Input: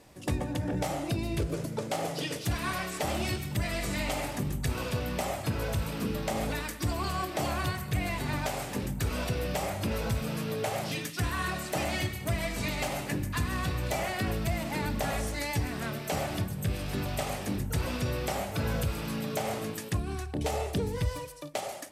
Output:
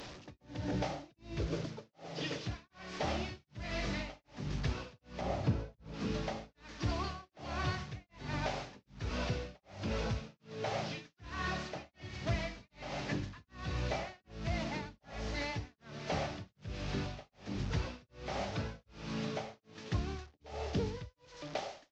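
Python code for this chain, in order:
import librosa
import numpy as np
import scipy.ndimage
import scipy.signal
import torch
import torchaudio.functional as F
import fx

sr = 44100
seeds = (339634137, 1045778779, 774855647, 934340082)

y = fx.delta_mod(x, sr, bps=32000, step_db=-37.0)
y = y * (1.0 - 1.0 / 2.0 + 1.0 / 2.0 * np.cos(2.0 * np.pi * 1.3 * (np.arange(len(y)) / sr)))
y = fx.tilt_shelf(y, sr, db=6.0, hz=840.0, at=(5.21, 5.94))
y = F.gain(torch.from_numpy(y), -3.5).numpy()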